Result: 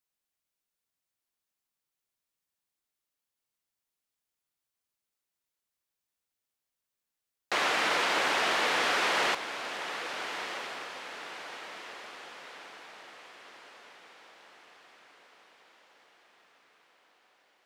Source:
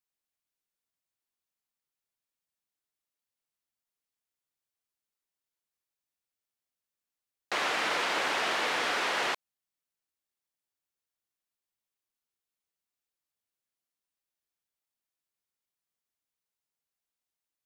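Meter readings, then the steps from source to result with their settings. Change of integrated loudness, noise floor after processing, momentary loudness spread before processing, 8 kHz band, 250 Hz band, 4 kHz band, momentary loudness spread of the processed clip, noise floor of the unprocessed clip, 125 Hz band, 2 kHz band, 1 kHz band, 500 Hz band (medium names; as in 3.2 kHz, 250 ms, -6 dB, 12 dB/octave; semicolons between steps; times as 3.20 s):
-0.5 dB, under -85 dBFS, 4 LU, +2.5 dB, +2.5 dB, +2.5 dB, 20 LU, under -85 dBFS, +2.5 dB, +2.5 dB, +2.5 dB, +2.5 dB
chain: echo that smears into a reverb 1331 ms, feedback 50%, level -9.5 dB; trim +2 dB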